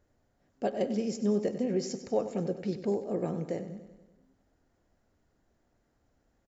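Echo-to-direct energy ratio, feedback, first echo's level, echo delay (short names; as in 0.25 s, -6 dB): -10.5 dB, 59%, -12.5 dB, 96 ms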